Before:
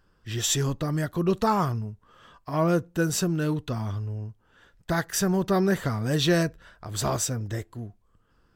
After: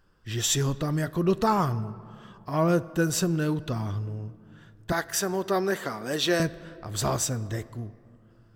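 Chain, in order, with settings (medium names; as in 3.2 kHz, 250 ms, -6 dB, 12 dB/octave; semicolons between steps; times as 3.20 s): 4.92–6.40 s: high-pass 320 Hz 12 dB/octave; on a send: reverberation RT60 2.6 s, pre-delay 3 ms, DRR 17 dB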